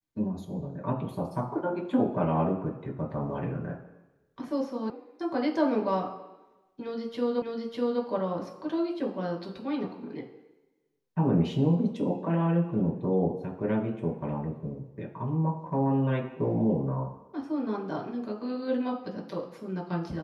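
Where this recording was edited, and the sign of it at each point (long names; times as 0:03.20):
0:04.90: cut off before it has died away
0:07.42: the same again, the last 0.6 s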